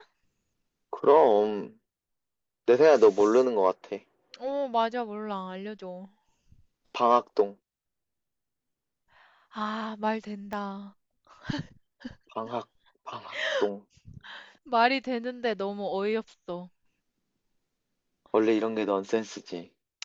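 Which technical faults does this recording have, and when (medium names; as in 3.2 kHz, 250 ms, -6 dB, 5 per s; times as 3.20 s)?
10.53 s: pop -22 dBFS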